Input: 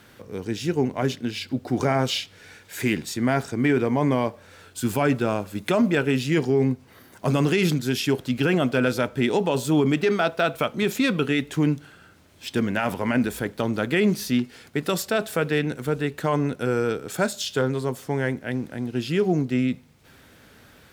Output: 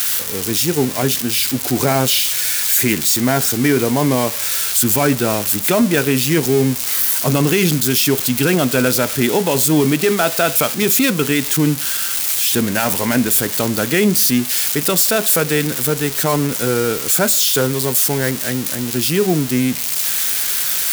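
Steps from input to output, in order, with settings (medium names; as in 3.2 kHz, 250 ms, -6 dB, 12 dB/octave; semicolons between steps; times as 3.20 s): zero-crossing glitches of -15 dBFS; trim +5.5 dB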